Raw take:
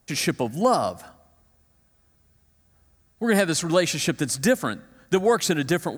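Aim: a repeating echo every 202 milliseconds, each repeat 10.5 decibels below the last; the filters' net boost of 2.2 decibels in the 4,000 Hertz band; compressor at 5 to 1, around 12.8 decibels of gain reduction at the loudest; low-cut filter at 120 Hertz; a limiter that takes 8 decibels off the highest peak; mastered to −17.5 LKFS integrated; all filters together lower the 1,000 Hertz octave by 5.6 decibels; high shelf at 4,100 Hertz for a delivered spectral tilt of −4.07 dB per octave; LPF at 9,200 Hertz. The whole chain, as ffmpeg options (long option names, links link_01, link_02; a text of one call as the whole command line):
ffmpeg -i in.wav -af "highpass=120,lowpass=9200,equalizer=frequency=1000:width_type=o:gain=-8,equalizer=frequency=4000:width_type=o:gain=8,highshelf=frequency=4100:gain=-8,acompressor=threshold=-31dB:ratio=5,alimiter=level_in=2dB:limit=-24dB:level=0:latency=1,volume=-2dB,aecho=1:1:202|404|606:0.299|0.0896|0.0269,volume=18.5dB" out.wav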